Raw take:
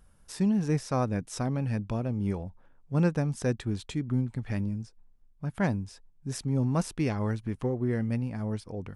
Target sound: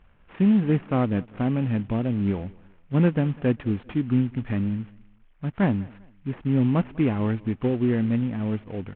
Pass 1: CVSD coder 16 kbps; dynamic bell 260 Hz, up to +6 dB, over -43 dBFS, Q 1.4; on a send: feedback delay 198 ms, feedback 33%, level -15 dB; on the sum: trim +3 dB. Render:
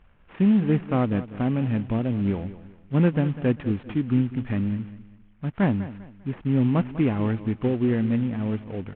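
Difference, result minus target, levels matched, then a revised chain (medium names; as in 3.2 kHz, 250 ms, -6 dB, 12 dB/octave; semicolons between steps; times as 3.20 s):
echo-to-direct +9 dB
CVSD coder 16 kbps; dynamic bell 260 Hz, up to +6 dB, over -43 dBFS, Q 1.4; on a send: feedback delay 198 ms, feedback 33%, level -24 dB; on the sum: trim +3 dB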